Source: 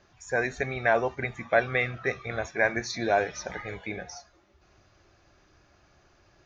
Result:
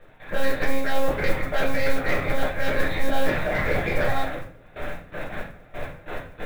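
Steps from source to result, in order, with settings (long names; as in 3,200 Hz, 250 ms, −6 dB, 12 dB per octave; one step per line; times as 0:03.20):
compressor on every frequency bin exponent 0.6
noise gate with hold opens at −33 dBFS
reversed playback
downward compressor 6 to 1, threshold −32 dBFS, peak gain reduction 16 dB
reversed playback
one-pitch LPC vocoder at 8 kHz 270 Hz
in parallel at −9 dB: sine wavefolder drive 11 dB, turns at −18 dBFS
on the sum: rectangular room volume 45 cubic metres, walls mixed, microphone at 0.82 metres
noise that follows the level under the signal 29 dB
level −1 dB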